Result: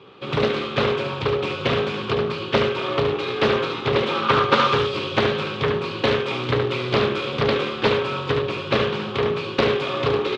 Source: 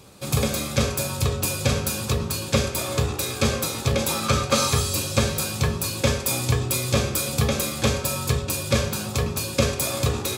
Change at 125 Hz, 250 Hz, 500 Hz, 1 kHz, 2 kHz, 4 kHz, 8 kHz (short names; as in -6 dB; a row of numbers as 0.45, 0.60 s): -4.5 dB, +1.0 dB, +6.5 dB, +6.5 dB, +5.0 dB, +1.5 dB, under -20 dB